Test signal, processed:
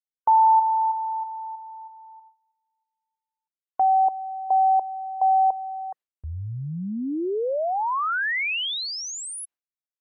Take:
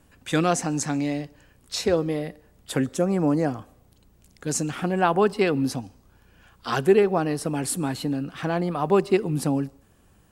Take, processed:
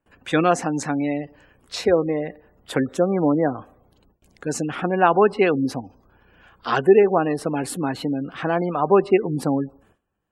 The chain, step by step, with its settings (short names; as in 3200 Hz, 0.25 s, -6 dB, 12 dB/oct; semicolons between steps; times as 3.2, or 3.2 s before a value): spectral gate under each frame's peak -30 dB strong; gate with hold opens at -48 dBFS; tone controls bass -7 dB, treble -10 dB; gain +5 dB